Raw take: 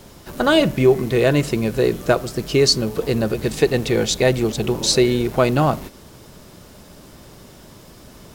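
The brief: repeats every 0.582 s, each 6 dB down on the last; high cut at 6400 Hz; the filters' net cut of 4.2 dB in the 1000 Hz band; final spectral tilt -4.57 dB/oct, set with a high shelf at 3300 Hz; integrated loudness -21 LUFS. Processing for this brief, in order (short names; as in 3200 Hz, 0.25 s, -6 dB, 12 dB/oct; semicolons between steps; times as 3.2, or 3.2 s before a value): LPF 6400 Hz; bell 1000 Hz -6.5 dB; high shelf 3300 Hz +4.5 dB; feedback echo 0.582 s, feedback 50%, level -6 dB; gain -3 dB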